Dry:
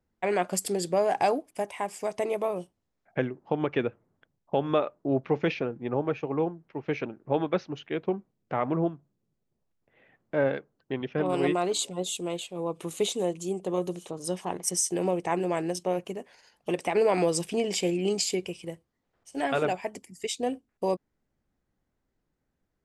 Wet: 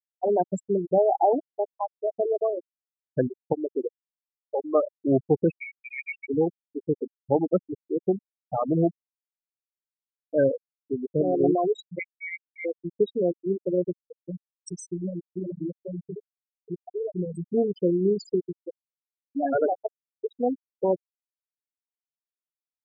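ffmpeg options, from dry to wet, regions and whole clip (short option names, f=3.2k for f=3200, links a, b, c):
-filter_complex "[0:a]asettb=1/sr,asplit=3[a][b][c];[a]atrim=end=3.534[d];[b]atrim=start=3.53:end=4.75,asetpts=PTS-STARTPTS,afade=t=in:d=0.004:c=qsin,afade=t=out:st=1.216:d=0.004:c=qsin,equalizer=f=110:t=o:w=2.2:g=-7.5,aeval=exprs='(tanh(11.2*val(0)+0.35)-tanh(0.35))/11.2':c=same[e];[c]atrim=start=4.746[f];[d][e]acrossfade=d=0.004:c1=hsin:c2=qsin[g];[g][f]acrossfade=d=0.004:c1=qsin:c2=hsin,asettb=1/sr,asplit=3[h][i][j];[h]atrim=end=5.534[k];[i]atrim=start=5.53:end=6.28,asetpts=PTS-STARTPTS,afade=t=in:d=0.004:c=qsin,afade=t=out:st=0.746:d=0.004:c=qsin,aeval=exprs='if(lt(val(0),0),0.447*val(0),val(0))':c=same,equalizer=f=1.1k:t=o:w=0.41:g=-7,lowpass=f=2.3k:t=q:w=0.5098,lowpass=f=2.3k:t=q:w=0.6013,lowpass=f=2.3k:t=q:w=0.9,lowpass=f=2.3k:t=q:w=2.563,afreqshift=-2700[l];[j]atrim=start=6.276[m];[k][l]acrossfade=d=0.004:c1=hsin:c2=qsin[n];[n][m]acrossfade=d=0.004:c1=qsin:c2=hsin,asettb=1/sr,asplit=3[o][p][q];[o]atrim=end=11.994[r];[p]atrim=start=11.99:end=12.65,asetpts=PTS-STARTPTS,afade=t=in:d=0.004:c=qsin,afade=t=out:st=0.656:d=0.004:c=qsin,highpass=190,lowpass=f=2.2k:t=q:w=0.5098,lowpass=f=2.2k:t=q:w=0.6013,lowpass=f=2.2k:t=q:w=0.9,lowpass=f=2.2k:t=q:w=2.563,afreqshift=-2600[s];[q]atrim=start=12.646[t];[r][s]acrossfade=d=0.004:c1=hsin:c2=qsin[u];[u][t]acrossfade=d=0.004:c1=qsin:c2=hsin,asettb=1/sr,asplit=3[v][w][x];[v]atrim=end=14.114[y];[w]atrim=start=14.11:end=17.45,asetpts=PTS-STARTPTS,afade=t=in:d=0.004:c=qsin,afade=t=out:st=3.336:d=0.004:c=qsin,lowshelf=f=170:g=7,acrossover=split=150|3000[z][aa][ab];[aa]acompressor=threshold=-32dB:ratio=6:attack=3.2:release=140:knee=2.83:detection=peak[ac];[z][ac][ab]amix=inputs=3:normalize=0,aecho=1:1:478:0.335,atrim=end_sample=147294[ad];[x]atrim=start=17.446[ae];[y][ad]acrossfade=d=0.004:c1=hsin:c2=qsin[af];[af][ae]acrossfade=d=0.004:c1=qsin:c2=hsin,afftfilt=real='re*gte(hypot(re,im),0.158)':imag='im*gte(hypot(re,im),0.158)':win_size=1024:overlap=0.75,lowpass=f=1.1k:p=1,volume=5.5dB"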